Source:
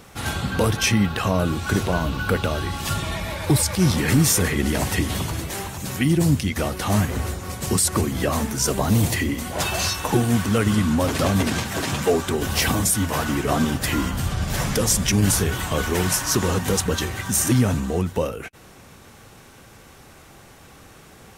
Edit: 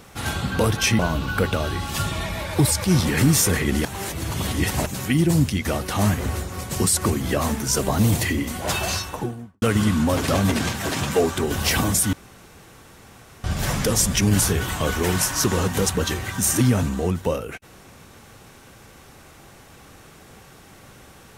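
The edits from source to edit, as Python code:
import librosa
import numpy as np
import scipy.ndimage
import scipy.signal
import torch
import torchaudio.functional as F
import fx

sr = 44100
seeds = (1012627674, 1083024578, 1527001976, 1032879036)

y = fx.studio_fade_out(x, sr, start_s=9.68, length_s=0.85)
y = fx.edit(y, sr, fx.cut(start_s=0.99, length_s=0.91),
    fx.reverse_span(start_s=4.76, length_s=1.01),
    fx.room_tone_fill(start_s=13.04, length_s=1.31), tone=tone)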